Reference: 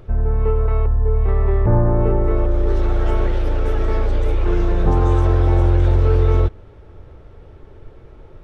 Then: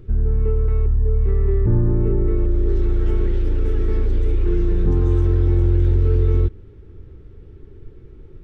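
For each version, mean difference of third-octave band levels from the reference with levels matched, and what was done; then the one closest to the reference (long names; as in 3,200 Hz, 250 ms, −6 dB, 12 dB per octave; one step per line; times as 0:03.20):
4.5 dB: drawn EQ curve 400 Hz 0 dB, 630 Hz −19 dB, 1,800 Hz −8 dB
in parallel at −1.5 dB: brickwall limiter −13.5 dBFS, peak gain reduction 8 dB
on the sum: level −4.5 dB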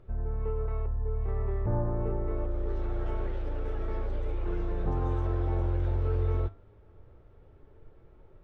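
1.5 dB: low-pass filter 2,600 Hz 6 dB per octave
flanger 0.24 Hz, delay 5.1 ms, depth 6 ms, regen +83%
level −9 dB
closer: second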